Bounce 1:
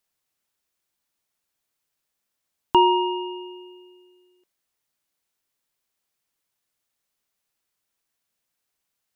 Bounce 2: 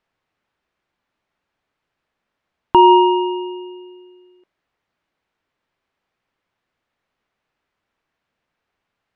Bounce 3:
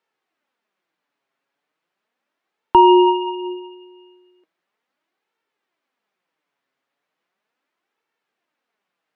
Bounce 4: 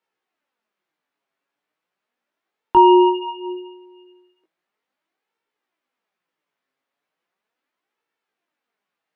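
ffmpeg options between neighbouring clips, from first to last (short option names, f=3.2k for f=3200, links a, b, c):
-af "lowpass=2.2k,alimiter=level_in=12dB:limit=-1dB:release=50:level=0:latency=1,volume=-1dB"
-filter_complex "[0:a]flanger=delay=2.2:depth=5.2:regen=43:speed=0.37:shape=sinusoidal,acrossover=split=170[a][b];[a]aeval=exprs='sgn(val(0))*max(abs(val(0))-0.0015,0)':c=same[c];[c][b]amix=inputs=2:normalize=0,volume=2.5dB"
-af "flanger=delay=16:depth=3.3:speed=0.52"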